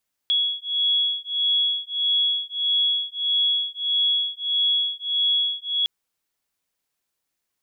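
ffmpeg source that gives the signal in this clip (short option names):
-f lavfi -i "aevalsrc='0.0708*(sin(2*PI*3350*t)+sin(2*PI*3351.6*t))':d=5.56:s=44100"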